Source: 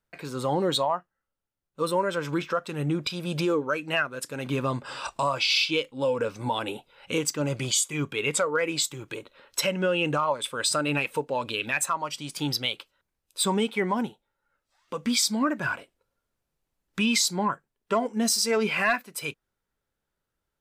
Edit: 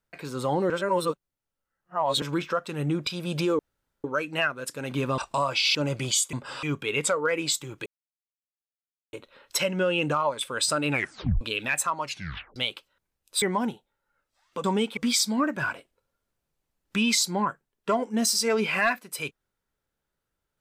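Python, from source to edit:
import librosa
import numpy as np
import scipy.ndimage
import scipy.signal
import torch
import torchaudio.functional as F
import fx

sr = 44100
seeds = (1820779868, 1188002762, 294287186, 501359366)

y = fx.edit(x, sr, fx.reverse_span(start_s=0.7, length_s=1.52),
    fx.insert_room_tone(at_s=3.59, length_s=0.45),
    fx.move(start_s=4.73, length_s=0.3, to_s=7.93),
    fx.cut(start_s=5.6, length_s=1.75),
    fx.insert_silence(at_s=9.16, length_s=1.27),
    fx.tape_stop(start_s=10.95, length_s=0.49),
    fx.tape_stop(start_s=12.07, length_s=0.52),
    fx.move(start_s=13.45, length_s=0.33, to_s=15.0), tone=tone)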